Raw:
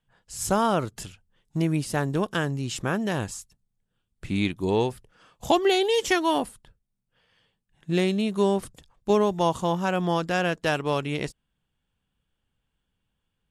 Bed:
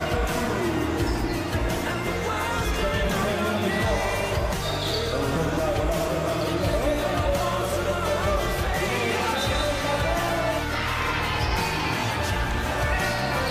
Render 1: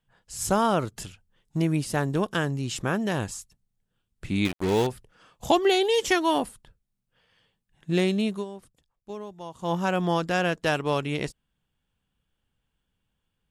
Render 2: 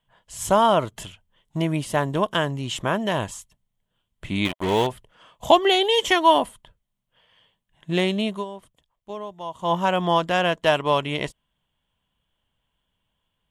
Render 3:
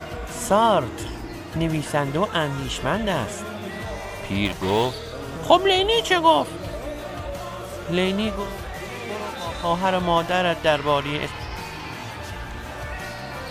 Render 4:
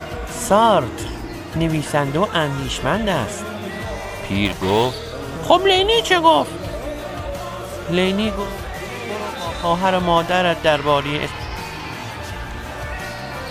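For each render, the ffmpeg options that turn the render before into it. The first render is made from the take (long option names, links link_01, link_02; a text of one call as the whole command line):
ffmpeg -i in.wav -filter_complex "[0:a]asettb=1/sr,asplit=3[link_01][link_02][link_03];[link_01]atrim=end=4.454[link_04];[link_02]atrim=start=4.45:end=4.87,asetpts=PTS-STARTPTS,afade=type=in:duration=0.004:curve=qsin,afade=type=out:start_time=0.416:duration=0.004:curve=qsin,acrusher=bits=4:mix=0:aa=0.5[link_05];[link_03]atrim=start=4.866[link_06];[link_04][link_05]acrossfade=duration=0.004:curve1=hsin:curve2=qsin[link_07];[link_07][link_06]acrossfade=duration=0.004:curve1=qsin:curve2=hsin,asplit=3[link_08][link_09][link_10];[link_08]atrim=end=8.45,asetpts=PTS-STARTPTS,afade=type=out:start_time=8.29:duration=0.16:silence=0.149624[link_11];[link_09]atrim=start=8.45:end=9.58,asetpts=PTS-STARTPTS,volume=-16.5dB[link_12];[link_10]atrim=start=9.58,asetpts=PTS-STARTPTS,afade=type=in:duration=0.16:silence=0.149624[link_13];[link_11][link_12][link_13]concat=n=3:v=0:a=1" out.wav
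ffmpeg -i in.wav -af "equalizer=frequency=630:width_type=o:width=0.33:gain=9,equalizer=frequency=1000:width_type=o:width=0.33:gain=10,equalizer=frequency=2000:width_type=o:width=0.33:gain=5,equalizer=frequency=3150:width_type=o:width=0.33:gain=10,equalizer=frequency=5000:width_type=o:width=0.33:gain=-5" out.wav
ffmpeg -i in.wav -i bed.wav -filter_complex "[1:a]volume=-8dB[link_01];[0:a][link_01]amix=inputs=2:normalize=0" out.wav
ffmpeg -i in.wav -af "volume=4dB,alimiter=limit=-2dB:level=0:latency=1" out.wav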